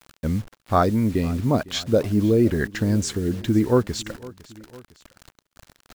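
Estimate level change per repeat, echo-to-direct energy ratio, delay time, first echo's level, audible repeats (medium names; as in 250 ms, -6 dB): -5.0 dB, -19.5 dB, 506 ms, -20.5 dB, 2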